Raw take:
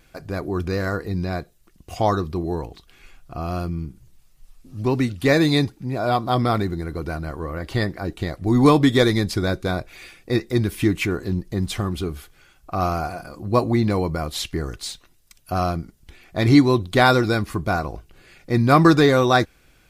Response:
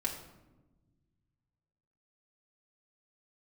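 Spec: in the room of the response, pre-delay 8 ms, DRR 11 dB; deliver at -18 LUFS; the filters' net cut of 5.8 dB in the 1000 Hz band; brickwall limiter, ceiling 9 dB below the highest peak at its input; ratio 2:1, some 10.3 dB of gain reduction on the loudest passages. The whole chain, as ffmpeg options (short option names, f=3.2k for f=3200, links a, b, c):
-filter_complex "[0:a]equalizer=f=1k:t=o:g=-8.5,acompressor=threshold=-29dB:ratio=2,alimiter=limit=-22.5dB:level=0:latency=1,asplit=2[a][b];[1:a]atrim=start_sample=2205,adelay=8[c];[b][c]afir=irnorm=-1:irlink=0,volume=-14.5dB[d];[a][d]amix=inputs=2:normalize=0,volume=15dB"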